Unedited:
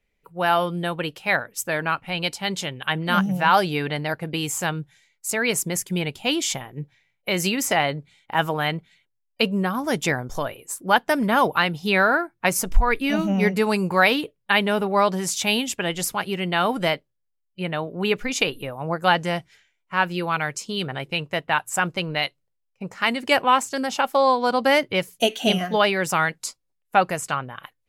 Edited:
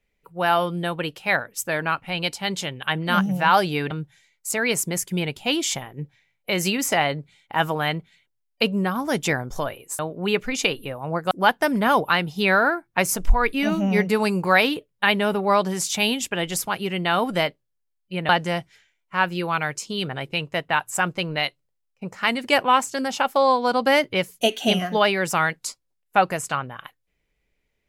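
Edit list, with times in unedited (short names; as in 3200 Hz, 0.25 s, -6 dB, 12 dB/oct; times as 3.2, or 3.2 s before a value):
3.91–4.7 cut
17.76–19.08 move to 10.78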